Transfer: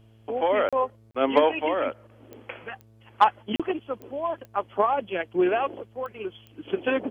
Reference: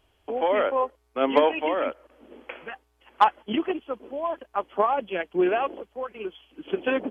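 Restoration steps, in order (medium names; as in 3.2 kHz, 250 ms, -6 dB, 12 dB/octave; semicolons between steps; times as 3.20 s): de-click; de-hum 110.9 Hz, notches 6; interpolate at 0.69/1.11/3.56 s, 36 ms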